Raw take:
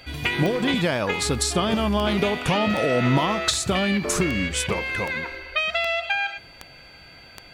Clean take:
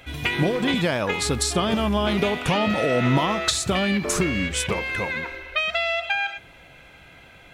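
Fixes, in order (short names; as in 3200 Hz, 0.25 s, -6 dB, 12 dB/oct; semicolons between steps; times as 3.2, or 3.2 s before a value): de-click; notch 4600 Hz, Q 30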